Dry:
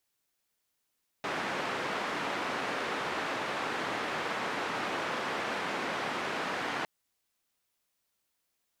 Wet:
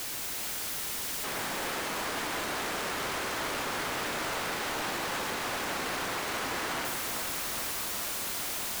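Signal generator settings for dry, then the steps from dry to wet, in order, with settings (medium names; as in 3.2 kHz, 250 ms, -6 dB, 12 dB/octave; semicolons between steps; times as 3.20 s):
noise band 210–1700 Hz, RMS -34 dBFS 5.61 s
one-bit comparator; echo whose repeats swap between lows and highs 110 ms, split 2.4 kHz, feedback 62%, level -3.5 dB; modulated delay 411 ms, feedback 80%, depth 113 cents, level -9 dB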